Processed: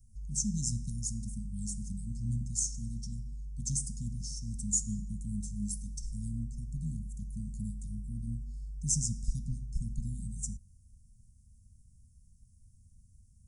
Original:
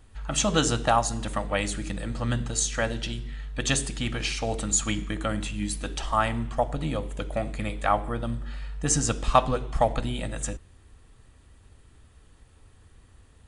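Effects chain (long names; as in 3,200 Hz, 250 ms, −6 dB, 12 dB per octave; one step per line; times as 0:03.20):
Chebyshev band-stop filter 220–5,400 Hz, order 5
level −4.5 dB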